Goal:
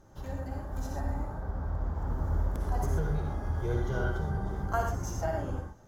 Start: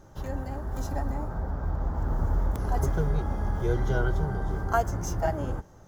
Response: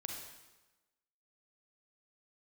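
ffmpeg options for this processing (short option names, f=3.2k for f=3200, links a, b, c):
-filter_complex "[1:a]atrim=start_sample=2205,atrim=end_sample=4410,asetrate=32193,aresample=44100[a];[0:a][a]afir=irnorm=-1:irlink=0,volume=-3.5dB"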